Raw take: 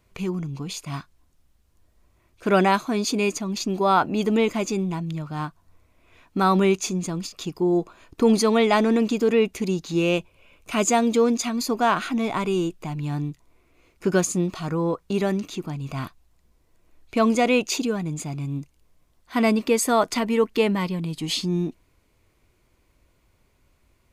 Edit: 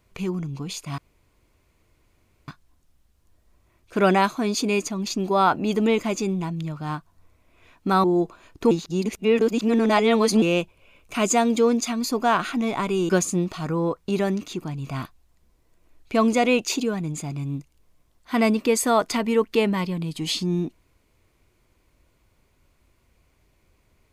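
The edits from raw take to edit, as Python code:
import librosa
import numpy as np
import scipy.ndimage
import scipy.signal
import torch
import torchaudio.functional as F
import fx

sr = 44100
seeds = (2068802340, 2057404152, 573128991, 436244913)

y = fx.edit(x, sr, fx.insert_room_tone(at_s=0.98, length_s=1.5),
    fx.cut(start_s=6.54, length_s=1.07),
    fx.reverse_span(start_s=8.28, length_s=1.71),
    fx.cut(start_s=12.66, length_s=1.45), tone=tone)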